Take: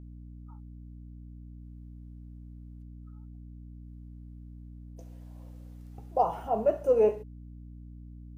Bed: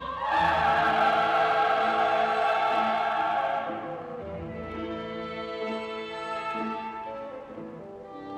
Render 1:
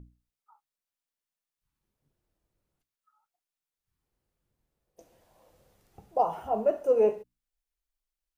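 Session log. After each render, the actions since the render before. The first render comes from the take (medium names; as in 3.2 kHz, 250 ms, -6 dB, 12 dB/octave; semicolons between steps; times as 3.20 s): hum notches 60/120/180/240/300 Hz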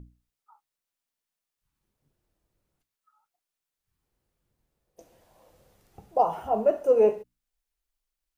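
trim +3 dB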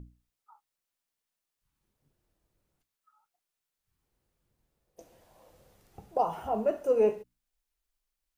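dynamic bell 630 Hz, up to -6 dB, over -32 dBFS, Q 0.83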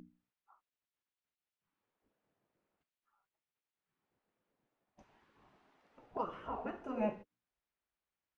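low-pass 2.4 kHz 12 dB/octave; spectral gate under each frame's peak -10 dB weak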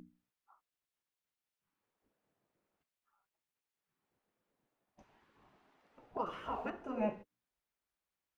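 6.26–6.70 s: treble shelf 2 kHz +11 dB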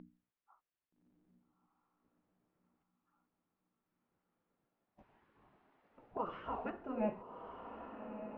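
distance through air 320 m; echo that smears into a reverb 1252 ms, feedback 50%, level -7.5 dB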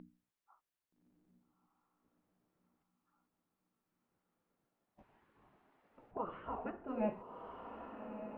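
6.11–6.88 s: distance through air 370 m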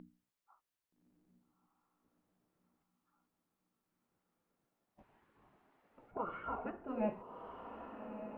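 6.07–6.66 s: small resonant body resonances 1.4/2.2 kHz, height 15 dB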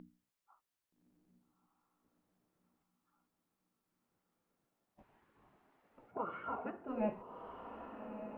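6.07–6.88 s: high-pass 110 Hz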